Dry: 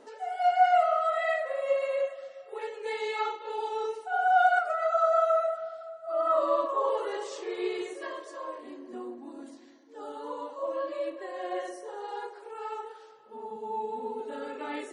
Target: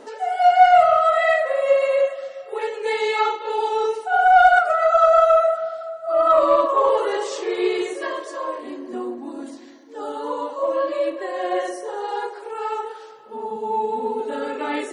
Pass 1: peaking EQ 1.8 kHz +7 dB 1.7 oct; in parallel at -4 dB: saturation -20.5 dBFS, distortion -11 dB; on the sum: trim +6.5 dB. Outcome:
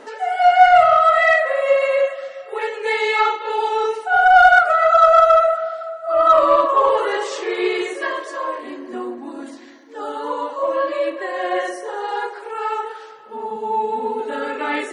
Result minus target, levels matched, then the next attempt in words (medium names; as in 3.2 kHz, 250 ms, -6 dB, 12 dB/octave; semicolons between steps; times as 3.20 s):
2 kHz band +3.0 dB
in parallel at -4 dB: saturation -20.5 dBFS, distortion -14 dB; on the sum: trim +6.5 dB